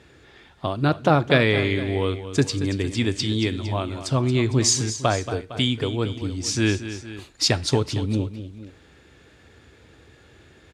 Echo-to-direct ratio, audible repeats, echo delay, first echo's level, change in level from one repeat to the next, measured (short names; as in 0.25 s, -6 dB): -10.5 dB, 2, 0.229 s, -12.0 dB, -4.5 dB